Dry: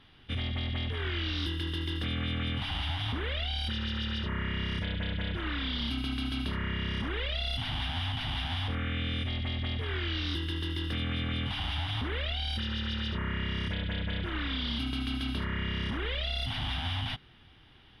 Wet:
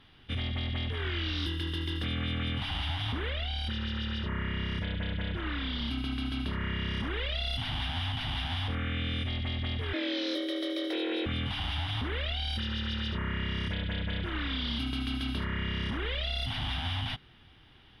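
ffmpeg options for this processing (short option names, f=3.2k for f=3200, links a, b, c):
-filter_complex "[0:a]asettb=1/sr,asplit=3[a][b][c];[a]atrim=end=3.304[d];[b]atrim=start=3.3:end=6.61,asetpts=PTS-STARTPTS,afade=t=in:d=0.004:c=qsin,afade=t=out:st=3.306:d=0.004:c=qsin,highshelf=f=3.8k:g=-5.5[e];[c]atrim=start=6.606[f];[d][e]acrossfade=d=0.004:c1=hsin:c2=qsin[g];[g][f]acrossfade=d=0.004:c1=qsin:c2=hsin,asettb=1/sr,asplit=3[h][i][j];[h]atrim=end=9.934[k];[i]atrim=start=9.93:end=11.26,asetpts=PTS-STARTPTS,afade=t=in:d=0.004:c=qsin,afade=t=out:st=1.326:d=0.004:c=qsin,afreqshift=240[l];[j]atrim=start=11.256[m];[k][l]acrossfade=d=0.004:c1=hsin:c2=qsin[n];[n][m]acrossfade=d=0.004:c1=qsin:c2=hsin"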